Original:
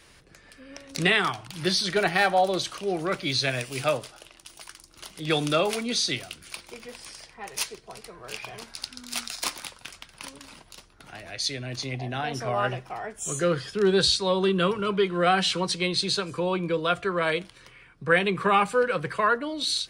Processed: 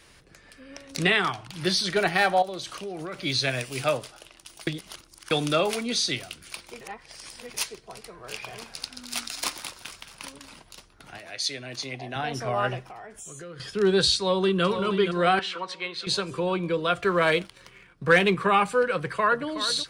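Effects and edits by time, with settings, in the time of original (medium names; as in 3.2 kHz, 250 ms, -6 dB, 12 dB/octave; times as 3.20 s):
1.04–1.61 s: treble shelf 9.2 kHz -7.5 dB
2.42–3.20 s: compression, threshold -31 dBFS
4.67–5.31 s: reverse
6.81–7.54 s: reverse
8.05–10.32 s: frequency-shifting echo 216 ms, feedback 55%, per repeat +39 Hz, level -13.5 dB
11.18–12.16 s: high-pass 320 Hz 6 dB/octave
12.88–13.60 s: compression, threshold -39 dBFS
14.17–14.64 s: echo throw 470 ms, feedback 55%, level -8.5 dB
15.39–16.07 s: band-pass filter 1.4 kHz, Q 0.98
17.00–18.35 s: waveshaping leveller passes 1
18.94–19.46 s: echo throw 370 ms, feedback 50%, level -11 dB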